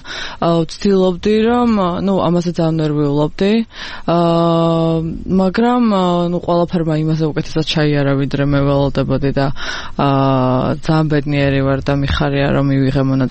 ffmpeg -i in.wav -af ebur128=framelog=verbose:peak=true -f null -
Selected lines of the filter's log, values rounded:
Integrated loudness:
  I:         -15.2 LUFS
  Threshold: -25.3 LUFS
Loudness range:
  LRA:         1.0 LU
  Threshold: -35.3 LUFS
  LRA low:   -15.8 LUFS
  LRA high:  -14.8 LUFS
True peak:
  Peak:       -3.6 dBFS